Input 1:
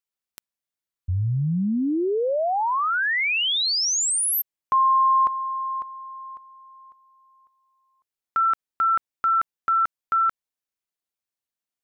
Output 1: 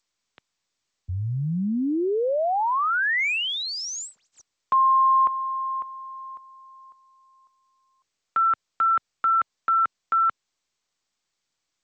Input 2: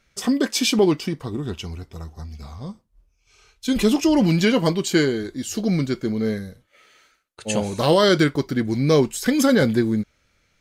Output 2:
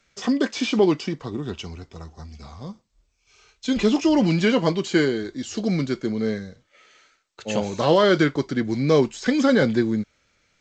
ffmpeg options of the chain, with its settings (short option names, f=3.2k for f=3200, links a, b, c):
-filter_complex "[0:a]acrossover=split=4700[a][b];[b]acompressor=threshold=-31dB:ratio=4:attack=1:release=60[c];[a][c]amix=inputs=2:normalize=0,lowshelf=f=120:g=-7.5,acrossover=split=130|1300|2400[d][e][f][g];[g]asoftclip=type=hard:threshold=-31dB[h];[d][e][f][h]amix=inputs=4:normalize=0" -ar 16000 -c:a g722